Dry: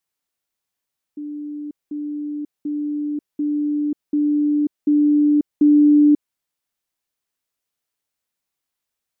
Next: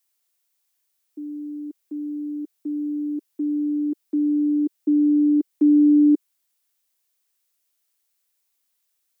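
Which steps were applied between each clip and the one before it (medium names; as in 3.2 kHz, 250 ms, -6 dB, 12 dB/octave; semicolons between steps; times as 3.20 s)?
ladder high-pass 260 Hz, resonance 40%; tilt EQ +3 dB/octave; trim +7.5 dB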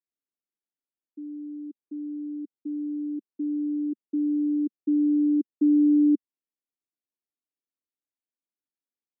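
band-pass filter 230 Hz, Q 2.6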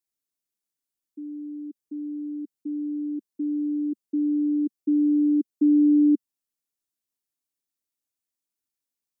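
tone controls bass +4 dB, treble +9 dB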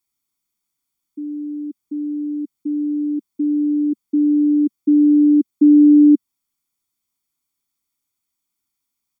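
comb 0.9 ms; trim +7 dB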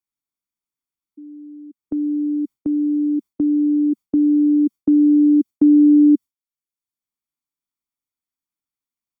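gate with hold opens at -22 dBFS; three bands compressed up and down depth 40%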